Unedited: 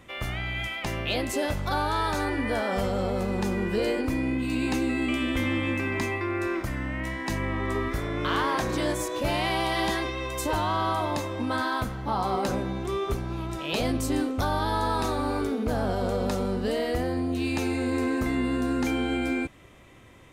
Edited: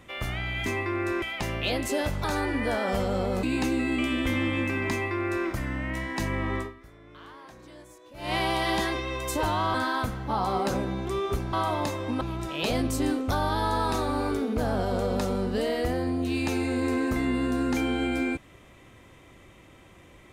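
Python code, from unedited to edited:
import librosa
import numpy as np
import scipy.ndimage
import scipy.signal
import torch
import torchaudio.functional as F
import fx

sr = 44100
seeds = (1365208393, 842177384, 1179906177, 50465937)

y = fx.edit(x, sr, fx.cut(start_s=1.68, length_s=0.4),
    fx.cut(start_s=3.27, length_s=1.26),
    fx.duplicate(start_s=6.01, length_s=0.56, to_s=0.66),
    fx.fade_down_up(start_s=7.67, length_s=1.76, db=-21.0, fade_s=0.2, curve='qua'),
    fx.move(start_s=10.84, length_s=0.68, to_s=13.31), tone=tone)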